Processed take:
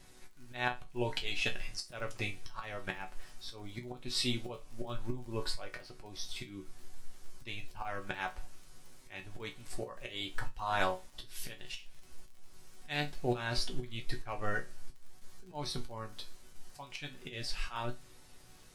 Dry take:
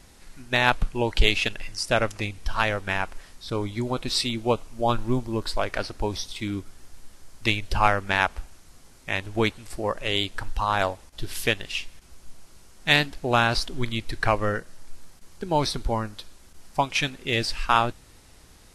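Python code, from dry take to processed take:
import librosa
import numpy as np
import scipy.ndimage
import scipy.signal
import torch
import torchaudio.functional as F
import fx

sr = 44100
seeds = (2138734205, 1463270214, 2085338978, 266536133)

y = fx.auto_swell(x, sr, attack_ms=329.0)
y = fx.dmg_crackle(y, sr, seeds[0], per_s=32.0, level_db=-40.0)
y = fx.resonator_bank(y, sr, root=47, chord='minor', decay_s=0.21)
y = y * 10.0 ** (6.0 / 20.0)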